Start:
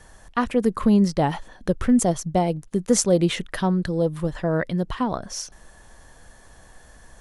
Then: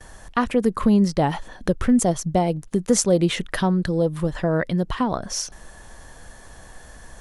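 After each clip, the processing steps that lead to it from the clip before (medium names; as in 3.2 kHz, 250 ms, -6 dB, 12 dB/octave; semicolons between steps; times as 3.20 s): gate with hold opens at -44 dBFS; in parallel at +2.5 dB: compression, threshold -28 dBFS, peak gain reduction 14.5 dB; on the sum: trim -2 dB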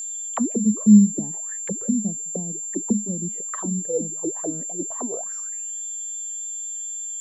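auto-wah 210–4400 Hz, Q 18, down, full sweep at -16 dBFS; whistle 7.3 kHz -37 dBFS; trim +8.5 dB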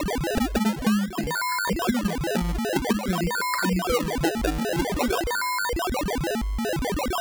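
compression 20:1, threshold -25 dBFS, peak gain reduction 19 dB; decimation with a swept rate 28×, swing 100% 0.5 Hz; trim +5.5 dB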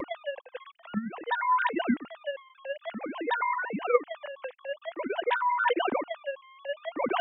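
formants replaced by sine waves; vibrato 1.4 Hz 26 cents; trim -6 dB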